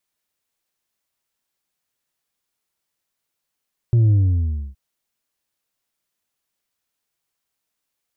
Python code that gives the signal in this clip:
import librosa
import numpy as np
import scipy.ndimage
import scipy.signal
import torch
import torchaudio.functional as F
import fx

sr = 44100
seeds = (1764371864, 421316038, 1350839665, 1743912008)

y = fx.sub_drop(sr, level_db=-12.0, start_hz=120.0, length_s=0.82, drive_db=3.5, fade_s=0.64, end_hz=65.0)